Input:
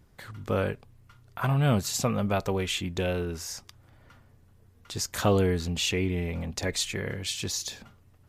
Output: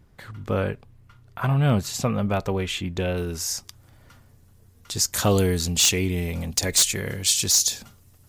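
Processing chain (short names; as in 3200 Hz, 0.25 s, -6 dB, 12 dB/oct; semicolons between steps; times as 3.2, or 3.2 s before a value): tone controls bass +2 dB, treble -3 dB, from 3.16 s treble +9 dB, from 5.29 s treble +15 dB; wavefolder -12.5 dBFS; gain +2 dB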